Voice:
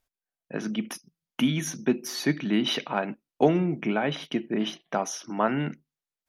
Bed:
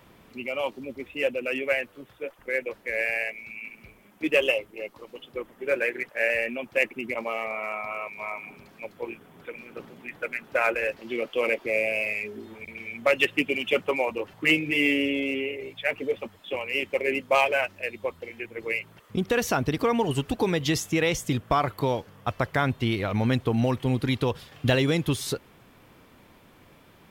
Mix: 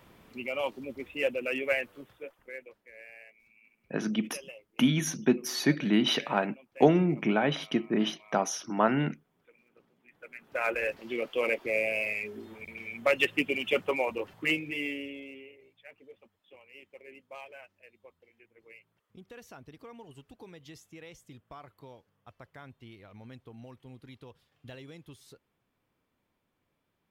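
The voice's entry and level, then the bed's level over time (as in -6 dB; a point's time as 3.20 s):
3.40 s, 0.0 dB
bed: 2.00 s -3 dB
2.91 s -23 dB
10.02 s -23 dB
10.75 s -3.5 dB
14.26 s -3.5 dB
15.79 s -24.5 dB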